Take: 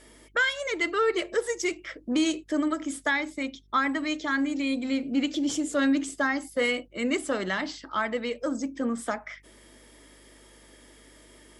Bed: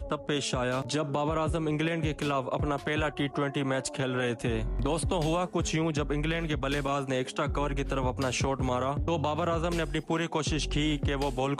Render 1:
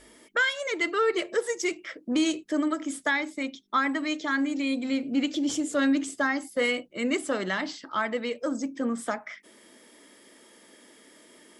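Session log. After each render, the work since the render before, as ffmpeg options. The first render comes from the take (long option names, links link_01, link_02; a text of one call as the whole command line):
ffmpeg -i in.wav -af "bandreject=frequency=50:width_type=h:width=4,bandreject=frequency=100:width_type=h:width=4,bandreject=frequency=150:width_type=h:width=4" out.wav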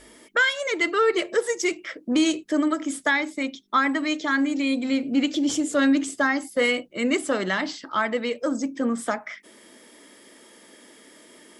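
ffmpeg -i in.wav -af "volume=4dB" out.wav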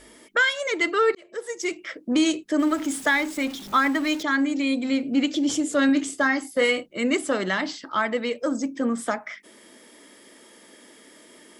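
ffmpeg -i in.wav -filter_complex "[0:a]asettb=1/sr,asplit=3[link_01][link_02][link_03];[link_01]atrim=end=2.594[link_04];[link_02]atrim=start=2.59:end=4.23,asetpts=PTS-STARTPTS,afade=type=in:duration=0.004:curve=qsin,afade=type=out:start_time=1.636:duration=0.004:curve=qsin,aeval=exprs='val(0)+0.5*0.02*sgn(val(0))':channel_layout=same[link_05];[link_03]atrim=start=4.226[link_06];[link_04][link_05]acrossfade=duration=0.004:curve1=hsin:curve2=qsin[link_07];[link_07][link_06]acrossfade=duration=0.004:curve1=qsin:curve2=hsin,asettb=1/sr,asplit=3[link_08][link_09][link_10];[link_08]atrim=end=5.864[link_11];[link_09]atrim=start=5.86:end=6.86,asetpts=PTS-STARTPTS,afade=type=in:duration=0.004:curve=qsin,afade=type=out:start_time=0.996:duration=0.004:curve=qsin,asplit=2[link_12][link_13];[link_13]adelay=27,volume=-9.5dB[link_14];[link_12][link_14]amix=inputs=2:normalize=0,atrim=end_sample=44100[link_15];[link_10]atrim=start=6.856[link_16];[link_11][link_15]acrossfade=duration=0.004:curve1=hsin:curve2=qsin[link_17];[link_17][link_16]acrossfade=duration=0.004:curve1=qsin:curve2=hsin,asplit=2[link_18][link_19];[link_18]atrim=end=1.15,asetpts=PTS-STARTPTS,afade=type=out:start_time=1.146:duration=0.004:curve=hsin[link_20];[link_19]atrim=start=1.15,asetpts=PTS-STARTPTS,afade=type=in:duration=0.76[link_21];[link_20][link_21]concat=n=2:v=0:a=1" out.wav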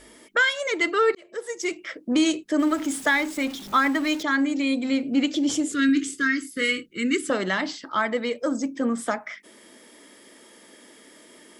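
ffmpeg -i in.wav -filter_complex "[0:a]asettb=1/sr,asplit=3[link_01][link_02][link_03];[link_01]atrim=end=5.724[link_04];[link_02]atrim=start=5.72:end=7.3,asetpts=PTS-STARTPTS,afade=type=in:duration=0.004:curve=qsin,afade=type=out:start_time=1.576:duration=0.004:curve=qsin,asuperstop=centerf=760:order=8:qfactor=0.87[link_05];[link_03]atrim=start=7.296[link_06];[link_04][link_05]acrossfade=duration=0.004:curve1=hsin:curve2=qsin[link_07];[link_07][link_06]acrossfade=duration=0.004:curve1=qsin:curve2=hsin,asettb=1/sr,asplit=3[link_08][link_09][link_10];[link_08]atrim=end=7.884[link_11];[link_09]atrim=start=7.88:end=8.56,asetpts=PTS-STARTPTS,afade=type=in:duration=0.004:curve=qsin,afade=type=out:start_time=0.676:duration=0.004:curve=qsin,bandreject=frequency=2700:width=13[link_12];[link_10]atrim=start=8.556[link_13];[link_11][link_12]acrossfade=duration=0.004:curve1=hsin:curve2=qsin[link_14];[link_14][link_13]acrossfade=duration=0.004:curve1=qsin:curve2=hsin" out.wav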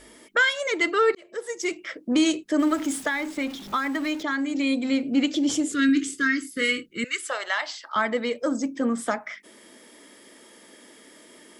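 ffmpeg -i in.wav -filter_complex "[0:a]asettb=1/sr,asplit=3[link_01][link_02][link_03];[link_01]atrim=end=3.024[link_04];[link_02]atrim=start=3.02:end=4.55,asetpts=PTS-STARTPTS,afade=type=in:duration=0.004:curve=qsin,afade=type=out:start_time=1.526:duration=0.004:curve=qsin,acrossover=split=2700|5600[link_05][link_06][link_07];[link_05]acompressor=threshold=-24dB:ratio=4[link_08];[link_06]acompressor=threshold=-41dB:ratio=4[link_09];[link_07]acompressor=threshold=-50dB:ratio=4[link_10];[link_08][link_09][link_10]amix=inputs=3:normalize=0[link_11];[link_03]atrim=start=4.546[link_12];[link_04][link_11]acrossfade=duration=0.004:curve1=hsin:curve2=qsin[link_13];[link_13][link_12]acrossfade=duration=0.004:curve1=qsin:curve2=hsin,asettb=1/sr,asplit=3[link_14][link_15][link_16];[link_14]atrim=end=7.044[link_17];[link_15]atrim=start=7.04:end=7.96,asetpts=PTS-STARTPTS,afade=type=in:duration=0.004:curve=qsin,afade=type=out:start_time=0.916:duration=0.004:curve=qsin,highpass=frequency=640:width=0.5412,highpass=frequency=640:width=1.3066[link_18];[link_16]atrim=start=7.956[link_19];[link_17][link_18]acrossfade=duration=0.004:curve1=hsin:curve2=qsin[link_20];[link_20][link_19]acrossfade=duration=0.004:curve1=qsin:curve2=hsin" out.wav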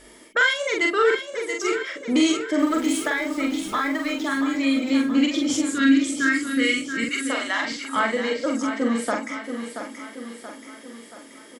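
ffmpeg -i in.wav -filter_complex "[0:a]asplit=2[link_01][link_02];[link_02]adelay=44,volume=-3dB[link_03];[link_01][link_03]amix=inputs=2:normalize=0,aecho=1:1:679|1358|2037|2716|3395|4074:0.355|0.188|0.0997|0.0528|0.028|0.0148" out.wav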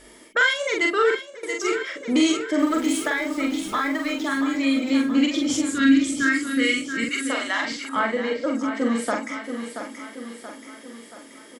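ffmpeg -i in.wav -filter_complex "[0:a]asettb=1/sr,asplit=3[link_01][link_02][link_03];[link_01]atrim=end=5.314[link_04];[link_02]atrim=start=5.31:end=6.23,asetpts=PTS-STARTPTS,afade=type=in:duration=0.004:curve=qsin,afade=type=out:start_time=0.916:duration=0.004:curve=qsin,asubboost=boost=8:cutoff=220[link_05];[link_03]atrim=start=6.226[link_06];[link_04][link_05]acrossfade=duration=0.004:curve1=hsin:curve2=qsin[link_07];[link_07][link_06]acrossfade=duration=0.004:curve1=qsin:curve2=hsin,asettb=1/sr,asplit=3[link_08][link_09][link_10];[link_08]atrim=end=7.894[link_11];[link_09]atrim=start=7.89:end=8.75,asetpts=PTS-STARTPTS,afade=type=in:duration=0.004:curve=qsin,afade=type=out:start_time=0.856:duration=0.004:curve=qsin,highshelf=frequency=4300:gain=-11.5[link_12];[link_10]atrim=start=8.746[link_13];[link_11][link_12]acrossfade=duration=0.004:curve1=hsin:curve2=qsin[link_14];[link_14][link_13]acrossfade=duration=0.004:curve1=qsin:curve2=hsin,asplit=2[link_15][link_16];[link_15]atrim=end=1.43,asetpts=PTS-STARTPTS,afade=type=out:start_time=0.92:duration=0.51:curve=qsin:silence=0.11885[link_17];[link_16]atrim=start=1.43,asetpts=PTS-STARTPTS,afade=type=in:duration=0.004:curve=hsin:silence=0.11885[link_18];[link_17][link_18]concat=n=2:v=0:a=1" out.wav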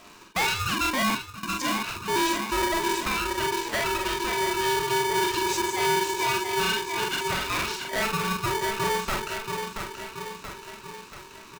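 ffmpeg -i in.wav -af "aresample=16000,asoftclip=type=tanh:threshold=-21dB,aresample=44100,aeval=exprs='val(0)*sgn(sin(2*PI*660*n/s))':channel_layout=same" out.wav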